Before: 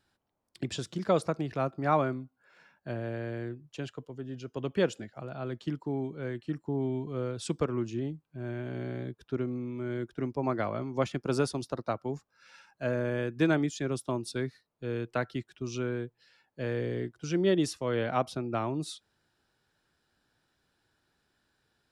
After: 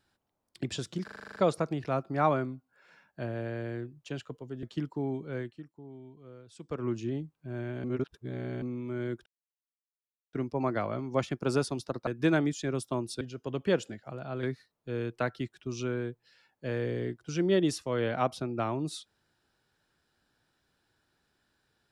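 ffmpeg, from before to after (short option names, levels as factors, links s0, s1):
-filter_complex "[0:a]asplit=18[s0][s1][s2][s3][s4][s5][s6][s7][s8][s9][s10][s11][s12][s13][s14][s15][s16][s17];[s0]atrim=end=1.082[s18];[s1]atrim=start=1.038:end=1.082[s19];[s2]atrim=start=1.038:end=1.082[s20];[s3]atrim=start=1.038:end=1.082[s21];[s4]atrim=start=1.038:end=1.082[s22];[s5]atrim=start=1.038:end=1.082[s23];[s6]atrim=start=1.038:end=1.082[s24];[s7]atrim=start=1.038:end=1.082[s25];[s8]atrim=start=1.038:end=4.312[s26];[s9]atrim=start=5.528:end=6.62,asetpts=PTS-STARTPTS,afade=t=out:st=0.782:d=0.31:c=qua:silence=0.149624[s27];[s10]atrim=start=6.62:end=7.45,asetpts=PTS-STARTPTS,volume=0.15[s28];[s11]atrim=start=7.45:end=8.742,asetpts=PTS-STARTPTS,afade=t=in:d=0.31:c=qua:silence=0.149624[s29];[s12]atrim=start=8.738:end=9.522,asetpts=PTS-STARTPTS,areverse[s30];[s13]atrim=start=9.518:end=10.16,asetpts=PTS-STARTPTS,afade=t=out:st=0.638:d=0.004:c=hsin,apad=pad_dur=1.07[s31];[s14]atrim=start=10.16:end=11.902,asetpts=PTS-STARTPTS,afade=t=in:d=0.004:c=hsin[s32];[s15]atrim=start=13.238:end=14.382[s33];[s16]atrim=start=4.308:end=5.532[s34];[s17]atrim=start=14.378[s35];[s18][s19]acrossfade=d=0.004:c1=hsin:c2=hsin[s36];[s36][s20]acrossfade=d=0.004:c1=hsin:c2=hsin[s37];[s37][s21]acrossfade=d=0.004:c1=hsin:c2=hsin[s38];[s38][s22]acrossfade=d=0.004:c1=hsin:c2=hsin[s39];[s39][s23]acrossfade=d=0.004:c1=hsin:c2=hsin[s40];[s40][s24]acrossfade=d=0.004:c1=hsin:c2=hsin[s41];[s41][s25]acrossfade=d=0.004:c1=hsin:c2=hsin[s42];[s42][s26]acrossfade=d=0.004:c1=hsin:c2=hsin[s43];[s27][s28][s29]concat=n=3:v=0:a=1[s44];[s43][s44]acrossfade=d=0.004:c1=hsin:c2=hsin[s45];[s45][s30]acrossfade=d=0.004:c1=hsin:c2=hsin[s46];[s31][s32]concat=n=2:v=0:a=1[s47];[s46][s47]acrossfade=d=0.004:c1=hsin:c2=hsin[s48];[s48][s33]acrossfade=d=0.004:c1=hsin:c2=hsin[s49];[s49][s34]acrossfade=d=0.004:c1=hsin:c2=hsin[s50];[s50][s35]acrossfade=d=0.004:c1=hsin:c2=hsin"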